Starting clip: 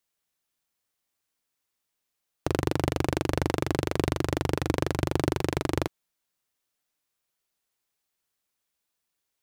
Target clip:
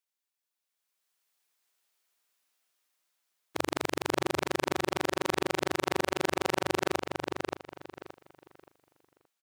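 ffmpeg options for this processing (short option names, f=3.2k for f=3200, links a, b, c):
-filter_complex "[0:a]areverse,highpass=f=660:p=1,dynaudnorm=f=640:g=3:m=12dB,asplit=2[a][b];[b]adelay=574,lowpass=f=4.2k:p=1,volume=-3.5dB,asplit=2[c][d];[d]adelay=574,lowpass=f=4.2k:p=1,volume=0.27,asplit=2[e][f];[f]adelay=574,lowpass=f=4.2k:p=1,volume=0.27,asplit=2[g][h];[h]adelay=574,lowpass=f=4.2k:p=1,volume=0.27[i];[c][e][g][i]amix=inputs=4:normalize=0[j];[a][j]amix=inputs=2:normalize=0,volume=-7.5dB"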